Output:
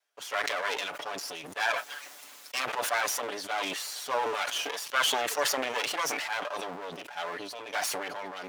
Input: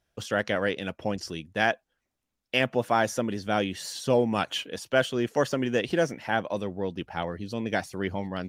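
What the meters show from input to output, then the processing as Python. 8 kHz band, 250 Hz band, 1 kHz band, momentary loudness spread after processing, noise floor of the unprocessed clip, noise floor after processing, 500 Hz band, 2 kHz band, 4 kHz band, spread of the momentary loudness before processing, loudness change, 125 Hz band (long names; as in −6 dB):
+7.0 dB, −16.0 dB, −1.0 dB, 10 LU, −83 dBFS, −49 dBFS, −8.0 dB, −0.5 dB, +2.5 dB, 8 LU, −2.5 dB, −22.5 dB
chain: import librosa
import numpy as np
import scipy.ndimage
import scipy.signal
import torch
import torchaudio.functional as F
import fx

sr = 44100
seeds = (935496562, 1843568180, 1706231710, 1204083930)

y = fx.lower_of_two(x, sr, delay_ms=6.9)
y = scipy.signal.sosfilt(scipy.signal.butter(2, 710.0, 'highpass', fs=sr, output='sos'), y)
y = fx.sustainer(y, sr, db_per_s=26.0)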